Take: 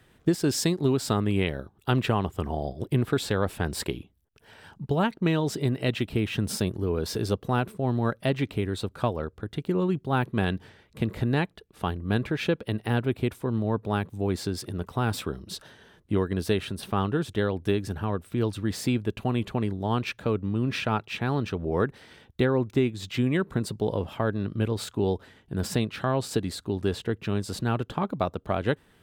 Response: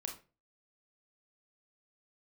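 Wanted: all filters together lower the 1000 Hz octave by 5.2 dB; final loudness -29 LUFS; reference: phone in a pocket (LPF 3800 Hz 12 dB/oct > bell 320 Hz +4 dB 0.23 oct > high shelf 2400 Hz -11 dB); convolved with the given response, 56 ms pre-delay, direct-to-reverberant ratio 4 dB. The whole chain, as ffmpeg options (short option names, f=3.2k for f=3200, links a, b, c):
-filter_complex "[0:a]equalizer=f=1k:t=o:g=-5,asplit=2[a][b];[1:a]atrim=start_sample=2205,adelay=56[c];[b][c]afir=irnorm=-1:irlink=0,volume=-2.5dB[d];[a][d]amix=inputs=2:normalize=0,lowpass=3.8k,equalizer=f=320:t=o:w=0.23:g=4,highshelf=f=2.4k:g=-11,volume=-2dB"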